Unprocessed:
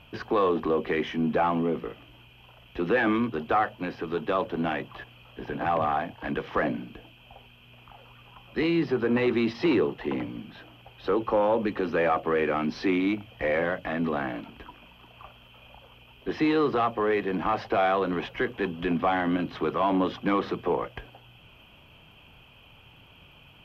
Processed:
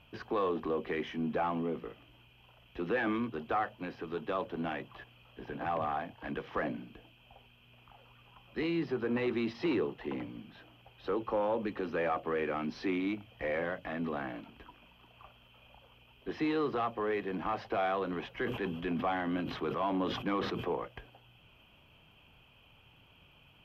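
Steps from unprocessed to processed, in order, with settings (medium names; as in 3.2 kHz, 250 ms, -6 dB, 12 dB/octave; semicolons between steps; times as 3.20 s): 18.37–20.67 s: decay stretcher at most 52 dB/s; trim -8 dB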